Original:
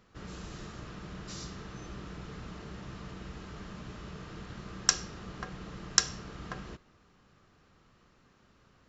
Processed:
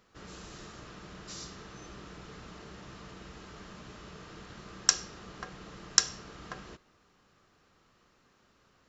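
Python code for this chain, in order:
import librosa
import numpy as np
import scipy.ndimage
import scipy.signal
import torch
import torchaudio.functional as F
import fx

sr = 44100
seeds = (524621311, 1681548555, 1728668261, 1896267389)

y = fx.bass_treble(x, sr, bass_db=-6, treble_db=3)
y = y * librosa.db_to_amplitude(-1.0)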